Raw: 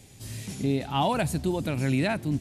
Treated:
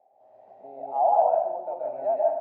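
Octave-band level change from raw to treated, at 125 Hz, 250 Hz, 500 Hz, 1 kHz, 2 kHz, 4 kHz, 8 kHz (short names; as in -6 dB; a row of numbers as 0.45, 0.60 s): under -35 dB, under -20 dB, +7.0 dB, +7.0 dB, under -20 dB, under -35 dB, under -40 dB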